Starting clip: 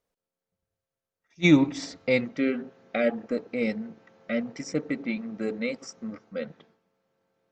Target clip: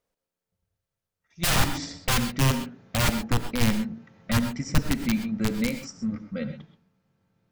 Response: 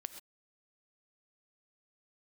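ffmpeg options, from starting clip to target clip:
-filter_complex "[0:a]aeval=exprs='(mod(9.44*val(0)+1,2)-1)/9.44':c=same,asubboost=boost=8.5:cutoff=150[a];[1:a]atrim=start_sample=2205[b];[a][b]afir=irnorm=-1:irlink=0,volume=4.5dB"

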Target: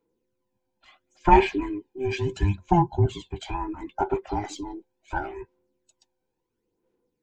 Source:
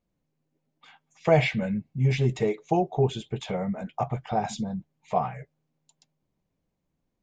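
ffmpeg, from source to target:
-af "afftfilt=real='real(if(between(b,1,1008),(2*floor((b-1)/24)+1)*24-b,b),0)':imag='imag(if(between(b,1,1008),(2*floor((b-1)/24)+1)*24-b,b),0)*if(between(b,1,1008),-1,1)':win_size=2048:overlap=0.75,aeval=exprs='0.447*(cos(1*acos(clip(val(0)/0.447,-1,1)))-cos(1*PI/2))+0.0501*(cos(2*acos(clip(val(0)/0.447,-1,1)))-cos(2*PI/2))':c=same,aphaser=in_gain=1:out_gain=1:delay=1.3:decay=0.54:speed=0.72:type=sinusoidal,volume=-2.5dB"

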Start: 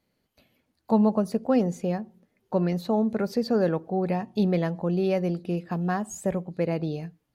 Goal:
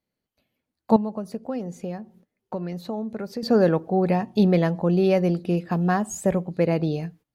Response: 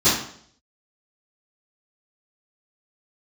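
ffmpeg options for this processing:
-filter_complex "[0:a]agate=range=-15dB:threshold=-53dB:ratio=16:detection=peak,asettb=1/sr,asplit=3[a][b][c];[a]atrim=end=0.964[d];[b]atrim=start=0.96:end=3.43,asetpts=PTS-STARTPTS,afade=t=in:d=0.004:c=qsin,afade=t=out:st=2.466:d=0.004:c=qsin,acompressor=threshold=-38dB:ratio=2.5[e];[c]atrim=start=3.426[f];[d][e]acrossfade=d=0.004:c1=hsin:c2=qsin[g];[g][f]acrossfade=d=0.004:c1=qsin:c2=hsin,volume=5dB"

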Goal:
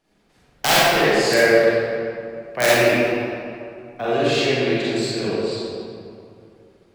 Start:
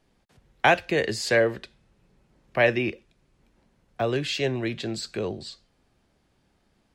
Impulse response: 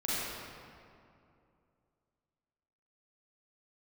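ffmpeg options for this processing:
-filter_complex "[0:a]aeval=exprs='0.531*(cos(1*acos(clip(val(0)/0.531,-1,1)))-cos(1*PI/2))+0.0133*(cos(5*acos(clip(val(0)/0.531,-1,1)))-cos(5*PI/2))':c=same,aeval=exprs='(mod(2.99*val(0)+1,2)-1)/2.99':c=same,lowshelf=f=170:g=-9[a];[1:a]atrim=start_sample=2205[b];[a][b]afir=irnorm=-1:irlink=0"

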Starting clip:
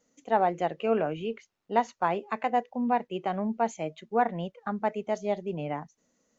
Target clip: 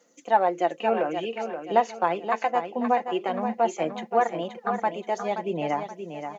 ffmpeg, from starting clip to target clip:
-filter_complex "[0:a]highpass=300,aecho=1:1:5.8:0.41,asplit=2[a][b];[b]acompressor=threshold=-36dB:ratio=6,volume=1.5dB[c];[a][c]amix=inputs=2:normalize=0,aphaser=in_gain=1:out_gain=1:delay=4:decay=0.34:speed=0.53:type=sinusoidal,aecho=1:1:526|1052|1578|2104:0.398|0.147|0.0545|0.0202"

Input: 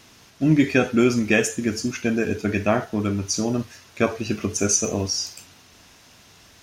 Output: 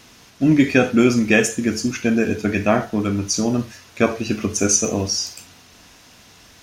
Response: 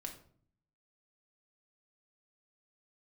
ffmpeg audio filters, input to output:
-filter_complex "[0:a]asplit=2[a][b];[1:a]atrim=start_sample=2205,atrim=end_sample=4410[c];[b][c]afir=irnorm=-1:irlink=0,volume=-2.5dB[d];[a][d]amix=inputs=2:normalize=0"

